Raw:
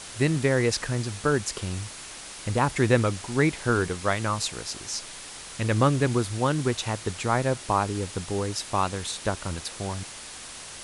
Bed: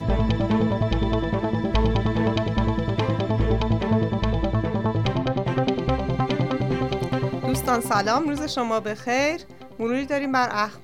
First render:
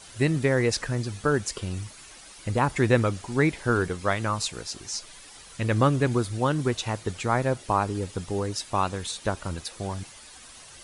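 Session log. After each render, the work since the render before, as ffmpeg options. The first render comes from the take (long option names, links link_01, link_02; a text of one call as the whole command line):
ffmpeg -i in.wav -af "afftdn=noise_reduction=10:noise_floor=-41" out.wav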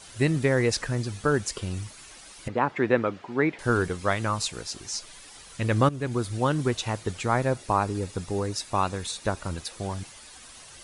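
ffmpeg -i in.wav -filter_complex "[0:a]asettb=1/sr,asplit=3[link_01][link_02][link_03];[link_01]atrim=end=2.484[link_04];[link_02]atrim=start=2.48:end=3.59,asetpts=PTS-STARTPTS,afade=type=in:duration=0.004:curve=qsin,afade=type=out:start_time=1.106:duration=0.004:curve=qsin,highpass=220,lowpass=2500[link_05];[link_03]atrim=start=3.586[link_06];[link_04][link_05]acrossfade=duration=0.004:curve1=hsin:curve2=qsin[link_07];[link_07][link_06]acrossfade=duration=0.004:curve1=qsin:curve2=hsin,asettb=1/sr,asplit=3[link_08][link_09][link_10];[link_08]atrim=end=7.454[link_11];[link_09]atrim=start=7.45:end=9.52,asetpts=PTS-STARTPTS,afade=type=in:duration=0.004:curve=qsin,afade=type=out:start_time=2.066:duration=0.004:curve=qsin,bandreject=frequency=3100:width=12[link_12];[link_10]atrim=start=9.516[link_13];[link_11][link_12]acrossfade=duration=0.004:curve1=hsin:curve2=qsin[link_14];[link_14][link_13]acrossfade=duration=0.004:curve1=qsin:curve2=hsin,asplit=2[link_15][link_16];[link_15]atrim=end=5.89,asetpts=PTS-STARTPTS,afade=type=out:start_time=5.886:duration=0.004:curve=hsin:silence=0.199526[link_17];[link_16]atrim=start=5.89,asetpts=PTS-STARTPTS,afade=type=in:duration=0.44:silence=0.199526[link_18];[link_17][link_18]concat=n=2:v=0:a=1" out.wav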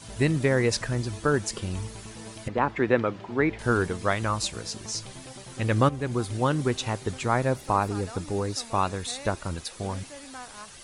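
ffmpeg -i in.wav -i bed.wav -filter_complex "[1:a]volume=-21dB[link_01];[0:a][link_01]amix=inputs=2:normalize=0" out.wav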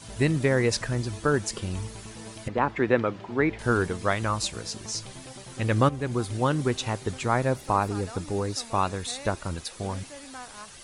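ffmpeg -i in.wav -af anull out.wav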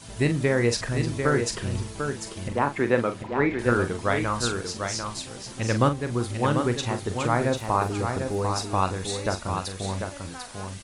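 ffmpeg -i in.wav -filter_complex "[0:a]asplit=2[link_01][link_02];[link_02]adelay=42,volume=-9dB[link_03];[link_01][link_03]amix=inputs=2:normalize=0,asplit=2[link_04][link_05];[link_05]aecho=0:1:745:0.501[link_06];[link_04][link_06]amix=inputs=2:normalize=0" out.wav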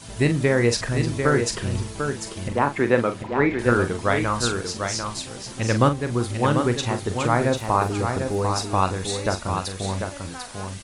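ffmpeg -i in.wav -af "volume=3dB" out.wav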